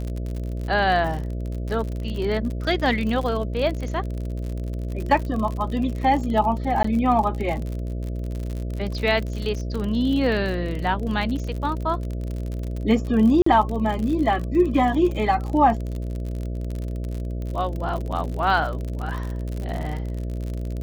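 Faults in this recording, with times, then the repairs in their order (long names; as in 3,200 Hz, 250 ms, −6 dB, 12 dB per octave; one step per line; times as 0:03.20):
mains buzz 60 Hz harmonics 11 −28 dBFS
surface crackle 53 per second −28 dBFS
0:06.83–0:06.84: drop-out 14 ms
0:13.42–0:13.46: drop-out 44 ms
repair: click removal
hum removal 60 Hz, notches 11
repair the gap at 0:06.83, 14 ms
repair the gap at 0:13.42, 44 ms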